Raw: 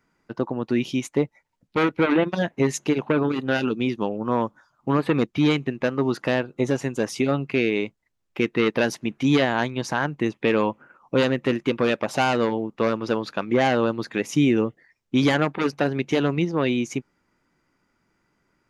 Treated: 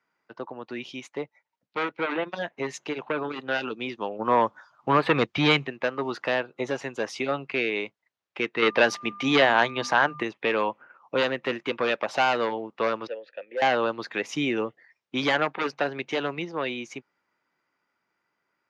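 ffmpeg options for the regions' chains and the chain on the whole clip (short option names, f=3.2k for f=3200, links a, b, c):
-filter_complex "[0:a]asettb=1/sr,asplit=3[a][b][c];[a]atrim=end=4.194[d];[b]atrim=start=4.19:end=5.67,asetpts=PTS-STARTPTS,afade=t=in:d=0.004:c=qsin,afade=t=out:st=1.476:d=0.004:c=qsin,asubboost=boost=7:cutoff=140,acontrast=83[e];[c]atrim=start=5.666[f];[d][e]acrossfade=d=0.004:c1=hsin:c2=qsin[g];[g][f]acrossfade=d=0.004:c1=qsin:c2=hsin,asettb=1/sr,asplit=3[h][i][j];[h]atrim=end=8.624[k];[i]atrim=start=8.62:end=10.23,asetpts=PTS-STARTPTS,afade=t=in:d=0.004:c=qsin,afade=t=out:st=1.606:d=0.004:c=qsin,bandreject=f=50:t=h:w=6,bandreject=f=100:t=h:w=6,bandreject=f=150:t=h:w=6,bandreject=f=200:t=h:w=6,bandreject=f=250:t=h:w=6,aeval=exprs='val(0)+0.00562*sin(2*PI*1200*n/s)':c=same,acontrast=27[l];[j]atrim=start=10.226[m];[k][l]acrossfade=d=0.004:c1=hsin:c2=qsin[n];[n][m]acrossfade=d=0.004:c1=qsin:c2=hsin,asettb=1/sr,asplit=3[o][p][q];[o]atrim=end=13.074[r];[p]atrim=start=13.07:end=13.62,asetpts=PTS-STARTPTS,afade=t=in:d=0.004:c=qsin,afade=t=out:st=0.546:d=0.004:c=qsin,asplit=3[s][t][u];[s]bandpass=f=530:t=q:w=8,volume=0dB[v];[t]bandpass=f=1.84k:t=q:w=8,volume=-6dB[w];[u]bandpass=f=2.48k:t=q:w=8,volume=-9dB[x];[v][w][x]amix=inputs=3:normalize=0,asoftclip=type=hard:threshold=-21.5dB[y];[q]atrim=start=13.616[z];[r][y]acrossfade=d=0.004:c1=hsin:c2=qsin[aa];[aa][z]acrossfade=d=0.004:c1=qsin:c2=hsin,highpass=100,acrossover=split=470 5700:gain=0.224 1 0.126[ab][ac][ad];[ab][ac][ad]amix=inputs=3:normalize=0,dynaudnorm=f=750:g=9:m=7dB,volume=-4.5dB"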